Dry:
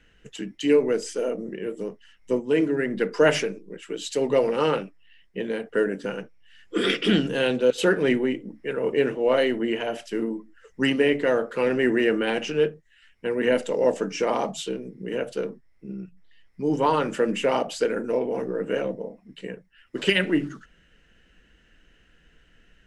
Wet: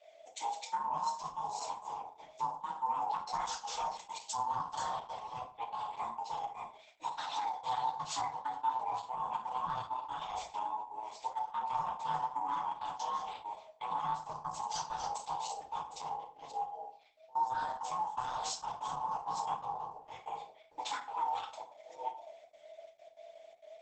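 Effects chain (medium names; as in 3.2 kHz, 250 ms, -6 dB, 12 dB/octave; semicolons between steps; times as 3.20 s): chunks repeated in reverse 433 ms, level -8 dB; amplifier tone stack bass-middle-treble 6-0-2; compression 6:1, threshold -47 dBFS, peak gain reduction 12.5 dB; ring modulator 660 Hz; sine folder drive 8 dB, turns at -19 dBFS; touch-sensitive phaser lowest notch 170 Hz, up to 2.5 kHz, full sweep at -27.5 dBFS; trance gate "xxx.xxx.xxxx.x.x" 172 bpm -24 dB; vibrato 4 Hz 29 cents; resonant low shelf 530 Hz -8 dB, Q 3; reverberation RT60 0.40 s, pre-delay 3 ms, DRR -3 dB; speed mistake 25 fps video run at 24 fps; trim +2 dB; Opus 10 kbps 48 kHz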